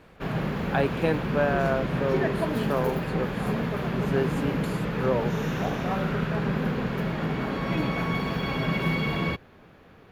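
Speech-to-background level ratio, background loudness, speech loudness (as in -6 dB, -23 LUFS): -2.0 dB, -28.0 LUFS, -30.0 LUFS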